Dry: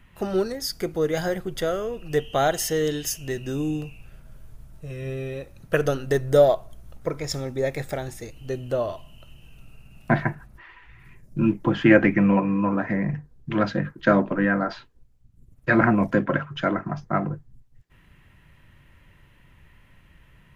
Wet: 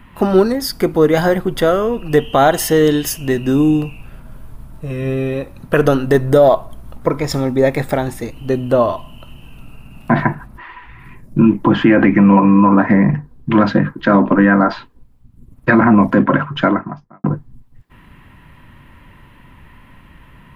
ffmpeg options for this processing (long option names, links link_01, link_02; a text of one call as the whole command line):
ffmpeg -i in.wav -filter_complex "[0:a]asplit=2[link_01][link_02];[link_01]atrim=end=17.24,asetpts=PTS-STARTPTS,afade=type=out:start_time=16.61:duration=0.63:curve=qua[link_03];[link_02]atrim=start=17.24,asetpts=PTS-STARTPTS,afade=type=in:duration=0.004:curve=hsin[link_04];[link_03][link_04]concat=n=2:v=0:a=1,equalizer=frequency=250:width_type=o:width=0.67:gain=8,equalizer=frequency=1000:width_type=o:width=0.67:gain=8,equalizer=frequency=6300:width_type=o:width=0.67:gain=-7,alimiter=level_in=10.5dB:limit=-1dB:release=50:level=0:latency=1,volume=-1dB" out.wav